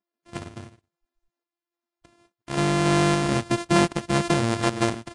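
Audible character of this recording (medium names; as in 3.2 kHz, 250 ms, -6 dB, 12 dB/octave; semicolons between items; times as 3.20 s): a buzz of ramps at a fixed pitch in blocks of 128 samples; random-step tremolo; Vorbis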